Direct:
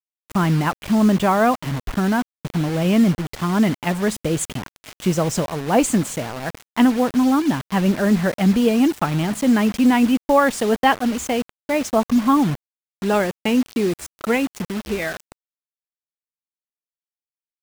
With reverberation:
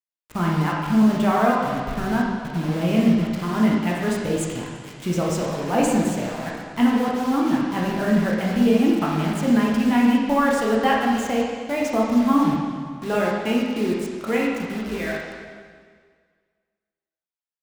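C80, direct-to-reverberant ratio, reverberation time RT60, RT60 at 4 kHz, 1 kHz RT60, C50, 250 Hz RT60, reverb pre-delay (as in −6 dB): 2.5 dB, −3.5 dB, 1.8 s, 1.7 s, 1.8 s, 0.0 dB, 1.9 s, 6 ms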